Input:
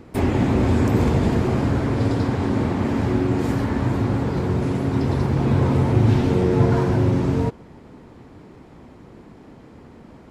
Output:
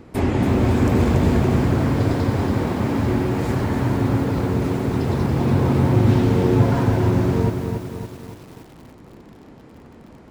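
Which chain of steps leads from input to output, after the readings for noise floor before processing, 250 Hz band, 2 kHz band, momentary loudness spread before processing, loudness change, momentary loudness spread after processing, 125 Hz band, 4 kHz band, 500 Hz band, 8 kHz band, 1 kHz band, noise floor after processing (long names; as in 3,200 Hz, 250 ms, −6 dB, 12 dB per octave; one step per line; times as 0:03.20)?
−46 dBFS, +1.0 dB, +1.5 dB, 5 LU, +1.0 dB, 6 LU, +1.0 dB, +1.5 dB, +1.0 dB, can't be measured, +1.5 dB, −45 dBFS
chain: feedback echo at a low word length 282 ms, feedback 55%, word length 7 bits, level −5.5 dB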